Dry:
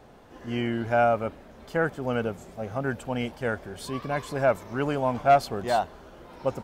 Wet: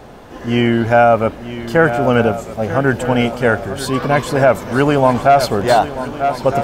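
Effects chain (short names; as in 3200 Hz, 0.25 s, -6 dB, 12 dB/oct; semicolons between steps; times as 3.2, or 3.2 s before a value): on a send: swung echo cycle 1.254 s, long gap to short 3:1, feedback 46%, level -13 dB; on the sum: maximiser +15 dB; gain -1 dB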